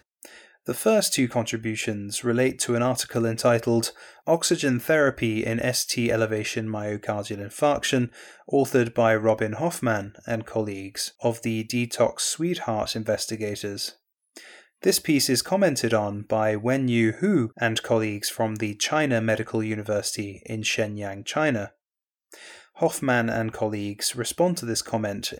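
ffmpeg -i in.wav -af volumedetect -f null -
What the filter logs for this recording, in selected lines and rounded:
mean_volume: -25.1 dB
max_volume: -6.8 dB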